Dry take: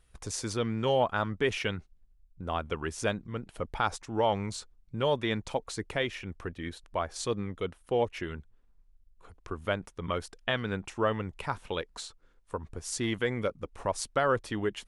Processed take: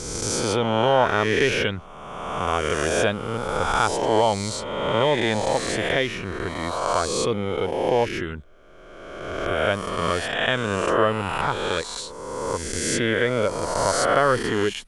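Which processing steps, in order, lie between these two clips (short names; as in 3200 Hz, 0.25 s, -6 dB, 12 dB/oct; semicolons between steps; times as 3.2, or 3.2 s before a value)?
spectral swells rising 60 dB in 1.75 s; gain +5 dB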